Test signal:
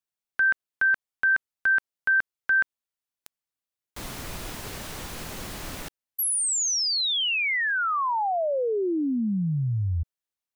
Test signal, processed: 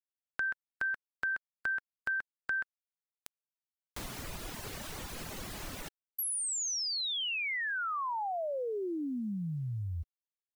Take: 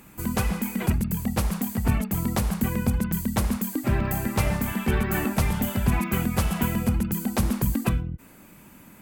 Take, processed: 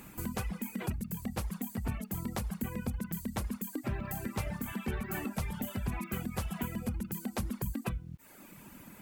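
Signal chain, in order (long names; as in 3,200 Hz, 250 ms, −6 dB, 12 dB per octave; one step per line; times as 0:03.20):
reverb reduction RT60 0.79 s
bit reduction 11 bits
downward compressor 2 to 1, threshold −41 dBFS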